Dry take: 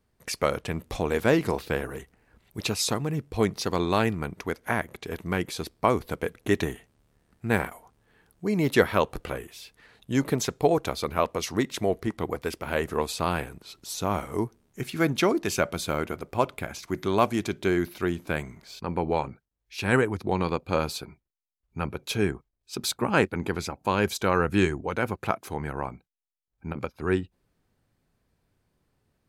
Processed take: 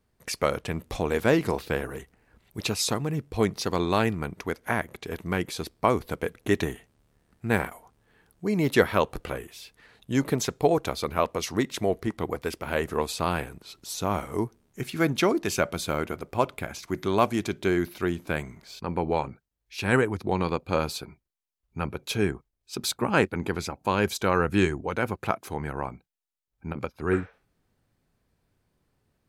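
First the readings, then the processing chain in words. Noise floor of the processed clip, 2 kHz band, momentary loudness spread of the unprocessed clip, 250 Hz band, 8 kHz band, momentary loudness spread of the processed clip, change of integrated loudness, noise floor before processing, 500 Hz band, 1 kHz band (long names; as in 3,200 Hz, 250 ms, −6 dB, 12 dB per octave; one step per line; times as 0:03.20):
−78 dBFS, 0.0 dB, 13 LU, 0.0 dB, 0.0 dB, 13 LU, 0.0 dB, −78 dBFS, 0.0 dB, 0.0 dB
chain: healed spectral selection 0:27.15–0:27.44, 420–6,300 Hz both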